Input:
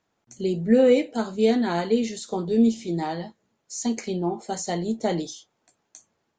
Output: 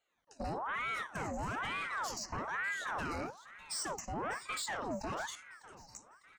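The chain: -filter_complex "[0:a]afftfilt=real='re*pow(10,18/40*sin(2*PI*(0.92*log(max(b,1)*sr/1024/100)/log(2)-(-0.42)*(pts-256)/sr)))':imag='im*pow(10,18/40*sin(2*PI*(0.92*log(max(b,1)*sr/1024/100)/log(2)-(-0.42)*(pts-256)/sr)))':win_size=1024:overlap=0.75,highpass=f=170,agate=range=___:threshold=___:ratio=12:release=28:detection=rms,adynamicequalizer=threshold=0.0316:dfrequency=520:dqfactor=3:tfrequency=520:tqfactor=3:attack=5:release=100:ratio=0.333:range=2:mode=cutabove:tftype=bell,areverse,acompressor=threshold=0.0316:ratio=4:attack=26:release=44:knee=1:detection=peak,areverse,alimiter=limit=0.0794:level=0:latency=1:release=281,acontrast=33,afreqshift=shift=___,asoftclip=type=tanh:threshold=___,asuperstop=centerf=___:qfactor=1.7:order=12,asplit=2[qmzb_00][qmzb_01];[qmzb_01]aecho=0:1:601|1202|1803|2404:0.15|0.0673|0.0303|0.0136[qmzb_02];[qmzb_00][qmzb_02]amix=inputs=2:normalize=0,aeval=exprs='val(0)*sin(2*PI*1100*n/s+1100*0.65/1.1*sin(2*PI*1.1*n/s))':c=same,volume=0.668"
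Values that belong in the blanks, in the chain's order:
0.398, 0.00891, -40, 0.0376, 3400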